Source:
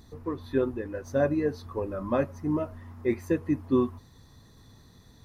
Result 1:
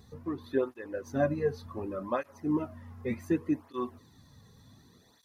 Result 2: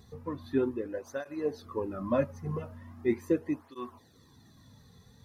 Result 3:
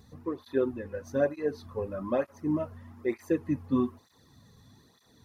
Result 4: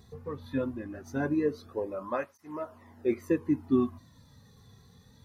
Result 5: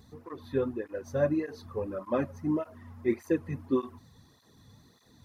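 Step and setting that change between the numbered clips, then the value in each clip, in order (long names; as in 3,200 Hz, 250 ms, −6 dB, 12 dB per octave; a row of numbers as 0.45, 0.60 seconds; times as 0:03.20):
through-zero flanger with one copy inverted, nulls at: 0.67, 0.4, 1.1, 0.21, 1.7 Hertz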